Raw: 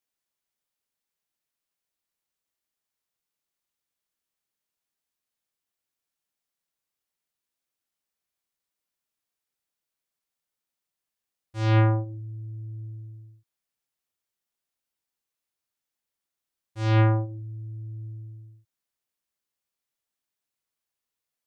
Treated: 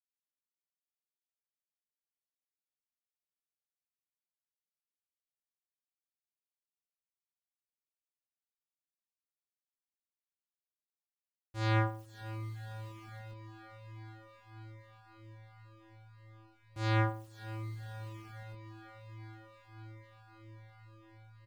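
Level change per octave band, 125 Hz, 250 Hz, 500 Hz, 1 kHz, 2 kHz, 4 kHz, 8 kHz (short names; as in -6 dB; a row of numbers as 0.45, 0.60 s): -11.0 dB, -9.5 dB, -8.5 dB, -5.5 dB, -3.5 dB, -4.0 dB, n/a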